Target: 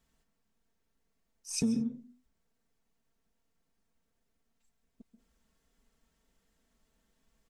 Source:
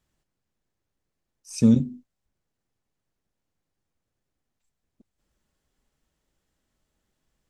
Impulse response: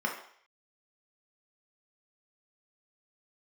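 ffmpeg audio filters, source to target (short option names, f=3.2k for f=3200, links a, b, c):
-filter_complex "[0:a]acompressor=threshold=-31dB:ratio=8,aecho=1:1:4.4:0.63,asplit=2[a][b];[1:a]atrim=start_sample=2205,atrim=end_sample=4410,adelay=133[c];[b][c]afir=irnorm=-1:irlink=0,volume=-17dB[d];[a][d]amix=inputs=2:normalize=0"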